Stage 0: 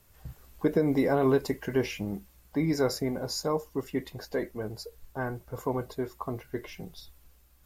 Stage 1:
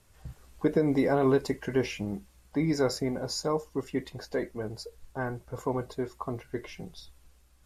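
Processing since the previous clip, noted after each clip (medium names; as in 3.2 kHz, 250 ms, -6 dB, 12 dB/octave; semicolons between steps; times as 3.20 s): low-pass 11 kHz 24 dB/octave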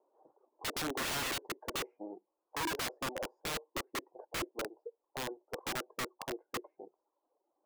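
elliptic band-pass 330–930 Hz, stop band 60 dB; reverb removal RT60 0.79 s; integer overflow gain 31 dB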